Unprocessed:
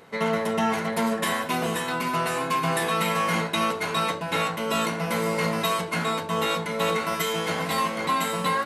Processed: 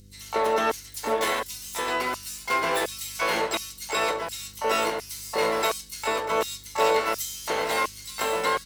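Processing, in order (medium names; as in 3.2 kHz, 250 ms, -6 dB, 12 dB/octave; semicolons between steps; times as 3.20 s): filtered feedback delay 131 ms, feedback 70%, low-pass 4 kHz, level -24 dB; LFO high-pass square 1.4 Hz 400–5500 Hz; hum 50 Hz, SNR 25 dB; harmony voices +5 st -9 dB, +12 st -4 dB; trim -3 dB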